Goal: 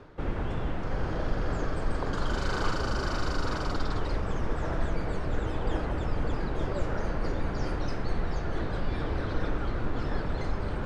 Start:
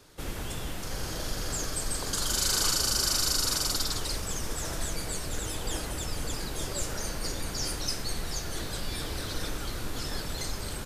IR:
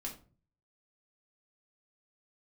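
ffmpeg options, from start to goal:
-af "lowpass=1500,areverse,acompressor=mode=upward:threshold=-36dB:ratio=2.5,areverse,volume=5.5dB"

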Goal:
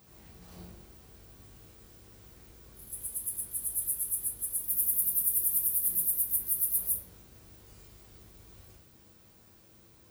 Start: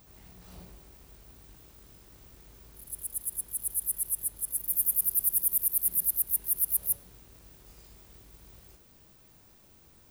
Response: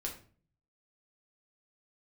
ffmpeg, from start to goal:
-filter_complex "[0:a]highpass=60[link_01];[1:a]atrim=start_sample=2205[link_02];[link_01][link_02]afir=irnorm=-1:irlink=0"

